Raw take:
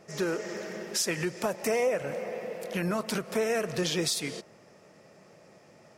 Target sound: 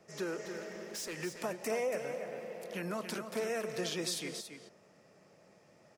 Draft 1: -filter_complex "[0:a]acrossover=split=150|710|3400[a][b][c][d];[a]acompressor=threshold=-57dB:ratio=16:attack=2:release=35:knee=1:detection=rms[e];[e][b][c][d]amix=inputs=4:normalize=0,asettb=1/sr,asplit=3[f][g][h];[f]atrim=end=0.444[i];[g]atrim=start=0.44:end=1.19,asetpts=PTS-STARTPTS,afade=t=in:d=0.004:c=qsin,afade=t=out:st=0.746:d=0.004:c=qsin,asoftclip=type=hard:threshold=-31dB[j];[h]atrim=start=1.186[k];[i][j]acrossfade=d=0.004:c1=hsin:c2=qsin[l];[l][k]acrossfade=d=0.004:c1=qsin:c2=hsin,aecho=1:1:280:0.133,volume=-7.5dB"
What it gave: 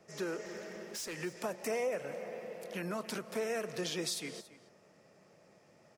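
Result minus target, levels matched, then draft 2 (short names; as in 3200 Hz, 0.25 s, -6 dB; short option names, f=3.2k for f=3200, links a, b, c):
echo-to-direct -8 dB
-filter_complex "[0:a]acrossover=split=150|710|3400[a][b][c][d];[a]acompressor=threshold=-57dB:ratio=16:attack=2:release=35:knee=1:detection=rms[e];[e][b][c][d]amix=inputs=4:normalize=0,asettb=1/sr,asplit=3[f][g][h];[f]atrim=end=0.444[i];[g]atrim=start=0.44:end=1.19,asetpts=PTS-STARTPTS,afade=t=in:d=0.004:c=qsin,afade=t=out:st=0.746:d=0.004:c=qsin,asoftclip=type=hard:threshold=-31dB[j];[h]atrim=start=1.186[k];[i][j]acrossfade=d=0.004:c1=hsin:c2=qsin[l];[l][k]acrossfade=d=0.004:c1=qsin:c2=hsin,aecho=1:1:280:0.398,volume=-7.5dB"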